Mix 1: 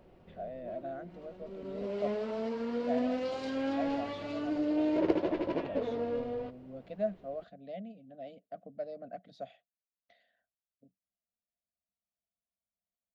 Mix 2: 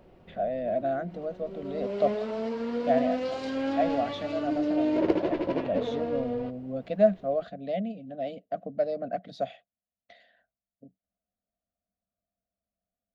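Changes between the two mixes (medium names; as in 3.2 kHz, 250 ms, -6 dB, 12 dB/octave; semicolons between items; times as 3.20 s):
speech +12.0 dB; background +3.5 dB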